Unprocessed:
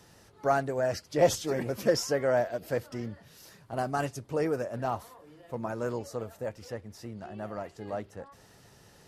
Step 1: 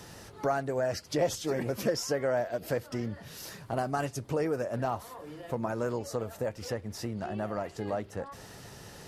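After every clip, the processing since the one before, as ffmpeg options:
-af "acompressor=threshold=0.00891:ratio=2.5,volume=2.82"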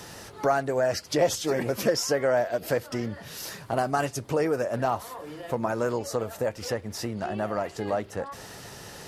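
-af "lowshelf=f=290:g=-5.5,volume=2.11"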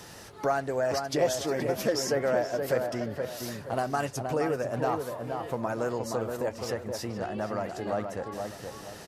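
-filter_complex "[0:a]asplit=2[s0][s1];[s1]adelay=473,lowpass=f=1700:p=1,volume=0.596,asplit=2[s2][s3];[s3]adelay=473,lowpass=f=1700:p=1,volume=0.36,asplit=2[s4][s5];[s5]adelay=473,lowpass=f=1700:p=1,volume=0.36,asplit=2[s6][s7];[s7]adelay=473,lowpass=f=1700:p=1,volume=0.36,asplit=2[s8][s9];[s9]adelay=473,lowpass=f=1700:p=1,volume=0.36[s10];[s0][s2][s4][s6][s8][s10]amix=inputs=6:normalize=0,volume=0.668"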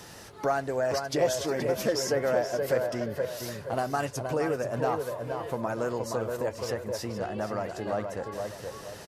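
-af "aecho=1:1:475:0.224"

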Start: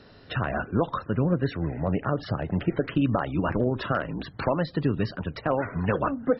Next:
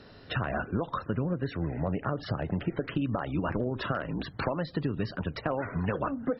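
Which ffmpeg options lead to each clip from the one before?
-af "acompressor=threshold=0.0501:ratio=6"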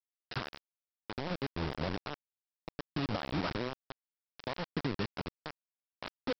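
-af "tremolo=f=0.61:d=0.82,aresample=11025,acrusher=bits=4:mix=0:aa=0.000001,aresample=44100,volume=0.596"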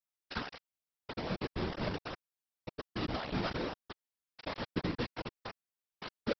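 -af "afftfilt=real='hypot(re,im)*cos(2*PI*random(0))':imag='hypot(re,im)*sin(2*PI*random(1))':win_size=512:overlap=0.75,volume=1.88"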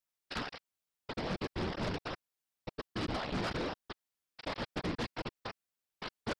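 -af "aeval=exprs='(tanh(20*val(0)+0.65)-tanh(0.65))/20':c=same,aeval=exprs='0.0473*sin(PI/2*1.78*val(0)/0.0473)':c=same,volume=0.708"

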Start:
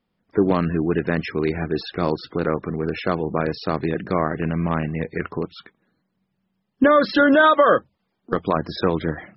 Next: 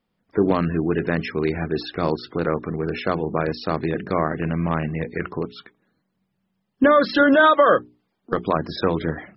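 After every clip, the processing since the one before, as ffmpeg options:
-af "bandreject=f=60:t=h:w=6,bandreject=f=120:t=h:w=6,bandreject=f=180:t=h:w=6,bandreject=f=240:t=h:w=6,bandreject=f=300:t=h:w=6,bandreject=f=360:t=h:w=6,bandreject=f=420:t=h:w=6"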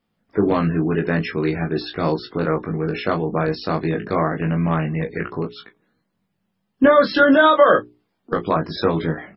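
-af "aecho=1:1:19|36:0.668|0.224"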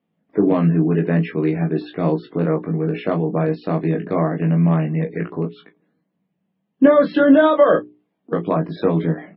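-af "highpass=130,equalizer=f=170:t=q:w=4:g=10,equalizer=f=290:t=q:w=4:g=8,equalizer=f=450:t=q:w=4:g=4,equalizer=f=640:t=q:w=4:g=5,equalizer=f=1400:t=q:w=4:g=-5,lowpass=f=3300:w=0.5412,lowpass=f=3300:w=1.3066,volume=0.668"

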